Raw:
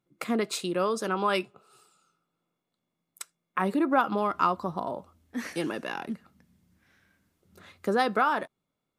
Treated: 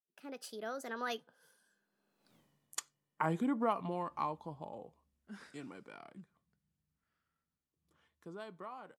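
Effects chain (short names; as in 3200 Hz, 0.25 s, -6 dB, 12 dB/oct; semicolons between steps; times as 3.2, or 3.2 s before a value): opening faded in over 0.54 s; Doppler pass-by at 2.35, 60 m/s, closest 4.3 m; gain +14.5 dB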